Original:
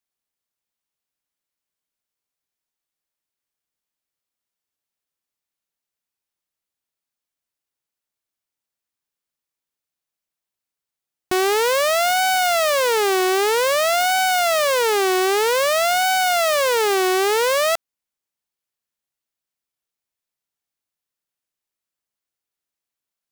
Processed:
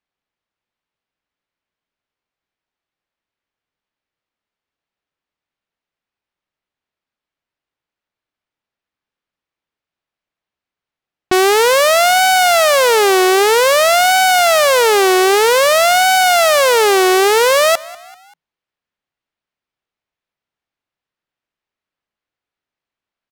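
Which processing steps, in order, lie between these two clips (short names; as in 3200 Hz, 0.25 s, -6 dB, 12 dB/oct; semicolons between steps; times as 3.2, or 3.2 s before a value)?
low-pass opened by the level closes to 3000 Hz, open at -18 dBFS; frequency-shifting echo 0.194 s, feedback 48%, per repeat +52 Hz, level -21 dB; gain +7 dB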